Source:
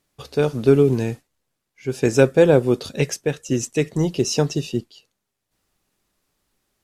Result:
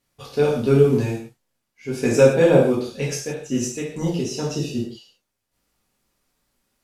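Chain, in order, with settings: 2.66–4.75 s: tremolo 2.1 Hz, depth 62%; gated-style reverb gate 200 ms falling, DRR -5 dB; trim -5.5 dB

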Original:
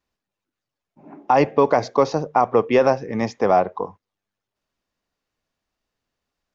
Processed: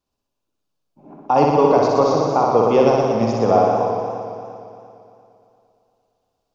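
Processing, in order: peaking EQ 1.9 kHz -14 dB 0.62 oct; flutter echo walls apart 10.6 m, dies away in 1.3 s; modulated delay 115 ms, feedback 75%, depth 76 cents, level -9 dB

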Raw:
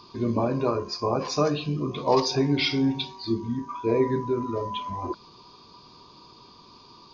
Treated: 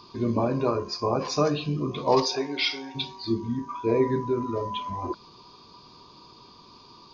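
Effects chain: 2.25–2.94 s: high-pass 340 Hz -> 820 Hz 12 dB/octave

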